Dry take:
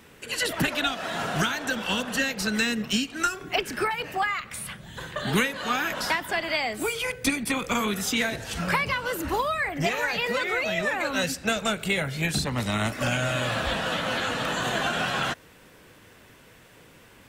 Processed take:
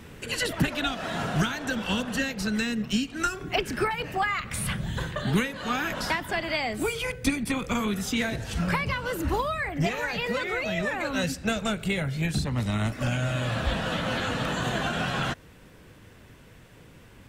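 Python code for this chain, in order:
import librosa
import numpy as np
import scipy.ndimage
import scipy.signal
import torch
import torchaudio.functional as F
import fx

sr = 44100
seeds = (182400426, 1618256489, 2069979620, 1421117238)

y = fx.low_shelf(x, sr, hz=220.0, db=11.5)
y = fx.rider(y, sr, range_db=10, speed_s=0.5)
y = fx.high_shelf(y, sr, hz=12000.0, db=-4.5)
y = y * librosa.db_to_amplitude(-3.5)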